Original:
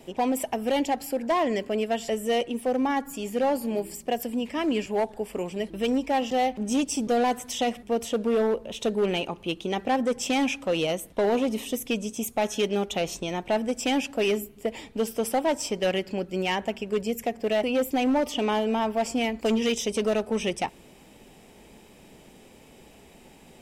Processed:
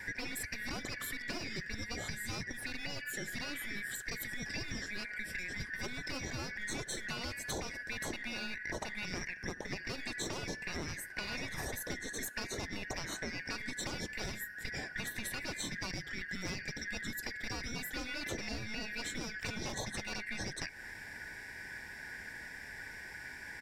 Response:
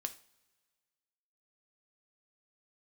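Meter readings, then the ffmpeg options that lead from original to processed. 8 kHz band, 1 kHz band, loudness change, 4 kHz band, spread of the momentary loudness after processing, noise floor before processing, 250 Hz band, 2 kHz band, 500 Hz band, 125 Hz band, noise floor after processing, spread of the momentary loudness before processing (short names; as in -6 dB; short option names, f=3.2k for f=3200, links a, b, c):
-6.5 dB, -19.5 dB, -13.0 dB, -8.0 dB, 6 LU, -52 dBFS, -18.0 dB, -2.0 dB, -22.0 dB, -5.0 dB, -48 dBFS, 6 LU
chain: -filter_complex "[0:a]afftfilt=real='real(if(lt(b,272),68*(eq(floor(b/68),0)*2+eq(floor(b/68),1)*0+eq(floor(b/68),2)*3+eq(floor(b/68),3)*1)+mod(b,68),b),0)':imag='imag(if(lt(b,272),68*(eq(floor(b/68),0)*2+eq(floor(b/68),1)*0+eq(floor(b/68),2)*3+eq(floor(b/68),3)*1)+mod(b,68),b),0)':win_size=2048:overlap=0.75,asplit=2[a][b];[b]aeval=exprs='clip(val(0),-1,0.0422)':c=same,volume=-9dB[c];[a][c]amix=inputs=2:normalize=0,asplit=2[d][e];[e]adelay=72,lowpass=f=1k:p=1,volume=-23.5dB,asplit=2[f][g];[g]adelay=72,lowpass=f=1k:p=1,volume=0.43,asplit=2[h][i];[i]adelay=72,lowpass=f=1k:p=1,volume=0.43[j];[d][f][h][j]amix=inputs=4:normalize=0,aeval=exprs='0.335*(cos(1*acos(clip(val(0)/0.335,-1,1)))-cos(1*PI/2))+0.0668*(cos(2*acos(clip(val(0)/0.335,-1,1)))-cos(2*PI/2))+0.0376*(cos(3*acos(clip(val(0)/0.335,-1,1)))-cos(3*PI/2))':c=same,afftfilt=real='re*lt(hypot(re,im),0.112)':imag='im*lt(hypot(re,im),0.112)':win_size=1024:overlap=0.75,highshelf=f=2k:g=-11,acompressor=threshold=-47dB:ratio=6,volume=10.5dB"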